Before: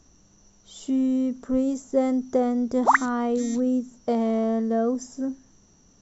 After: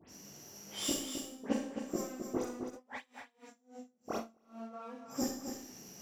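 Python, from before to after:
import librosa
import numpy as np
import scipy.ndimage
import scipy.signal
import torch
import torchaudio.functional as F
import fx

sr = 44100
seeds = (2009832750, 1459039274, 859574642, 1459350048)

y = fx.lower_of_two(x, sr, delay_ms=0.39)
y = scipy.signal.sosfilt(scipy.signal.butter(2, 140.0, 'highpass', fs=sr, output='sos'), y)
y = fx.low_shelf(y, sr, hz=290.0, db=-7.0)
y = fx.gate_flip(y, sr, shuts_db=-26.0, range_db=-28)
y = fx.dispersion(y, sr, late='highs', ms=92.0, hz=2800.0)
y = fx.chorus_voices(y, sr, voices=2, hz=0.6, base_ms=18, depth_ms=4.2, mix_pct=60)
y = y + 10.0 ** (-7.5 / 20.0) * np.pad(y, (int(261 * sr / 1000.0), 0))[:len(y)]
y = fx.rev_schroeder(y, sr, rt60_s=0.57, comb_ms=28, drr_db=2.0)
y = fx.tremolo_db(y, sr, hz=fx.line((2.69, 5.1), (4.72, 1.8)), depth_db=32, at=(2.69, 4.72), fade=0.02)
y = y * librosa.db_to_amplitude(11.0)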